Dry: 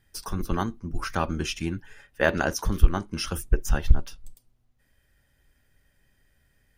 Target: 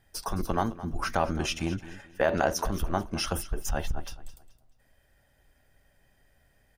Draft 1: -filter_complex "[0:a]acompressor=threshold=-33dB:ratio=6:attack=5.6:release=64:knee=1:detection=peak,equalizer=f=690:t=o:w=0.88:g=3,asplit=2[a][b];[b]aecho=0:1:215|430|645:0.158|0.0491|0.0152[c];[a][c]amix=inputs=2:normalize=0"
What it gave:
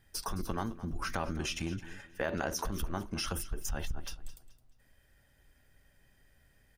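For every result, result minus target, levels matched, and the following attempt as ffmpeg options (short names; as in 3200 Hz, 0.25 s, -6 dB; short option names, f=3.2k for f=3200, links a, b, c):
compressor: peak gain reduction +6 dB; 500 Hz band -3.0 dB
-filter_complex "[0:a]acompressor=threshold=-26dB:ratio=6:attack=5.6:release=64:knee=1:detection=peak,equalizer=f=690:t=o:w=0.88:g=3,asplit=2[a][b];[b]aecho=0:1:215|430|645:0.158|0.0491|0.0152[c];[a][c]amix=inputs=2:normalize=0"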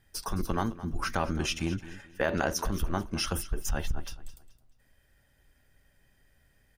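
500 Hz band -2.5 dB
-filter_complex "[0:a]acompressor=threshold=-26dB:ratio=6:attack=5.6:release=64:knee=1:detection=peak,equalizer=f=690:t=o:w=0.88:g=9.5,asplit=2[a][b];[b]aecho=0:1:215|430|645:0.158|0.0491|0.0152[c];[a][c]amix=inputs=2:normalize=0"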